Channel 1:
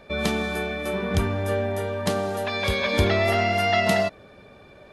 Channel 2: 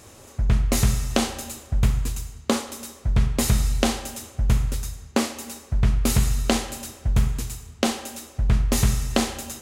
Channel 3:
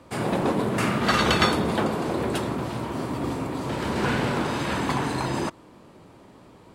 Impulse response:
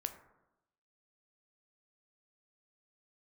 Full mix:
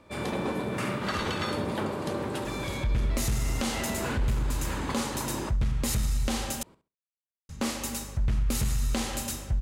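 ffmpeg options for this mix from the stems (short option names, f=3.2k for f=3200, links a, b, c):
-filter_complex "[0:a]volume=-12dB[a];[1:a]equalizer=f=410:t=o:w=0.22:g=-5,aeval=exprs='val(0)+0.00708*(sin(2*PI*50*n/s)+sin(2*PI*2*50*n/s)/2+sin(2*PI*3*50*n/s)/3+sin(2*PI*4*50*n/s)/4+sin(2*PI*5*50*n/s)/5)':c=same,adelay=2450,volume=2.5dB,asplit=3[b][c][d];[b]atrim=end=6.63,asetpts=PTS-STARTPTS,afade=t=out:st=6.626:d=0.004:c=hsin[e];[c]atrim=start=6.63:end=7.49,asetpts=PTS-STARTPTS,volume=0[f];[d]atrim=start=7.49,asetpts=PTS-STARTPTS,afade=t=in:d=0.004:c=hsin[g];[e][f][g]concat=n=3:v=0:a=1[h];[2:a]volume=-7dB,asplit=2[i][j];[j]volume=-12dB,aecho=0:1:67|134|201:1|0.18|0.0324[k];[a][h][i][k]amix=inputs=4:normalize=0,asoftclip=type=tanh:threshold=-8.5dB,bandreject=f=700:w=12,alimiter=limit=-20dB:level=0:latency=1:release=163"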